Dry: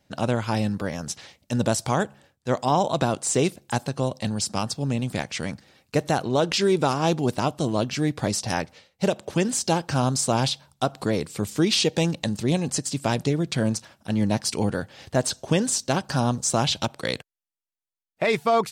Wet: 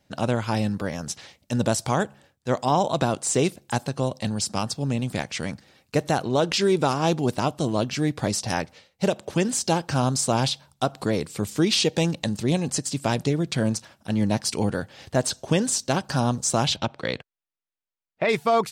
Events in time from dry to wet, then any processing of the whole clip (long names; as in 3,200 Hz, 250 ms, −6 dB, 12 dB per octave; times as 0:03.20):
0:16.76–0:18.29: low-pass filter 3,700 Hz